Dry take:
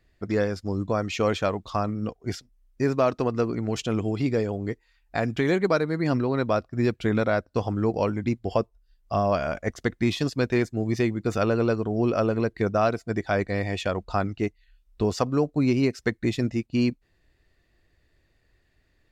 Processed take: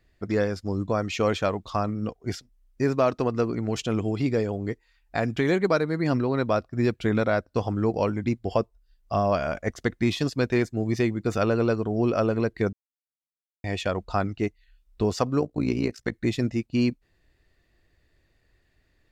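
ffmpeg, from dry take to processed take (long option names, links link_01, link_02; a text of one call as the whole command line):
ffmpeg -i in.wav -filter_complex "[0:a]asplit=3[link_01][link_02][link_03];[link_01]afade=type=out:start_time=15.39:duration=0.02[link_04];[link_02]tremolo=f=58:d=0.857,afade=type=in:start_time=15.39:duration=0.02,afade=type=out:start_time=16.12:duration=0.02[link_05];[link_03]afade=type=in:start_time=16.12:duration=0.02[link_06];[link_04][link_05][link_06]amix=inputs=3:normalize=0,asplit=3[link_07][link_08][link_09];[link_07]atrim=end=12.73,asetpts=PTS-STARTPTS,afade=type=out:start_time=12.726:duration=0.004:curve=hsin[link_10];[link_08]atrim=start=12.73:end=13.64,asetpts=PTS-STARTPTS,volume=0[link_11];[link_09]atrim=start=13.64,asetpts=PTS-STARTPTS,afade=type=in:duration=0.004:curve=hsin[link_12];[link_10][link_11][link_12]concat=n=3:v=0:a=1" out.wav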